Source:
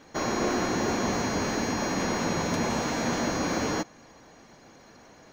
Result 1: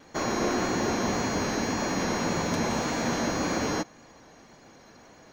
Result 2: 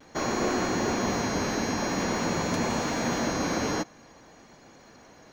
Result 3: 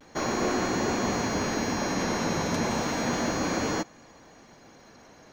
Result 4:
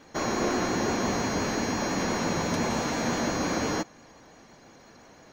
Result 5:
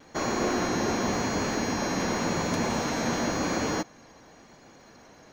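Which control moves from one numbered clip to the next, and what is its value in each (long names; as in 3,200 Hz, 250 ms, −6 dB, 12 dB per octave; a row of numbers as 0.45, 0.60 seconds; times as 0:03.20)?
pitch vibrato, speed: 1.8, 0.49, 0.33, 5.8, 0.92 Hertz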